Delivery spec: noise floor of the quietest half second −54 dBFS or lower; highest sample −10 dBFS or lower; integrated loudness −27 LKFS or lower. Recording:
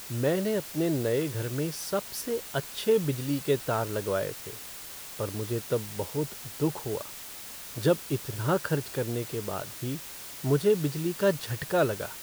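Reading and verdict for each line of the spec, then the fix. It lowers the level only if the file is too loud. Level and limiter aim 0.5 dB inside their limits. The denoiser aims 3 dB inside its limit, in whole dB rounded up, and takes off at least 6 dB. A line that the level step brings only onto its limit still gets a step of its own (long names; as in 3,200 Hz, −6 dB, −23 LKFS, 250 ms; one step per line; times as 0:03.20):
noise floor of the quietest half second −42 dBFS: out of spec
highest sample −12.0 dBFS: in spec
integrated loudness −30.0 LKFS: in spec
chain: broadband denoise 15 dB, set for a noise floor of −42 dBFS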